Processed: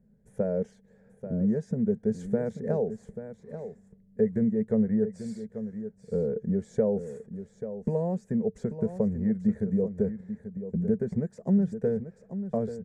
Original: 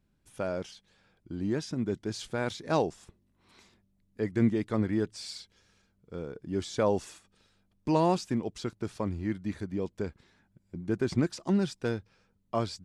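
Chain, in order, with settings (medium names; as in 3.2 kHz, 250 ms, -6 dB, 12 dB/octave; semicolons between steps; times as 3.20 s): compression 5:1, threshold -34 dBFS, peak gain reduction 13.5 dB; FFT filter 100 Hz 0 dB, 220 Hz +13 dB, 310 Hz -14 dB, 440 Hz +13 dB, 1.2 kHz -15 dB, 1.8 kHz -3 dB, 2.8 kHz -25 dB, 5 kHz -22 dB, 7.1 kHz -10 dB, 11 kHz -14 dB; delay 837 ms -11 dB; trim +3.5 dB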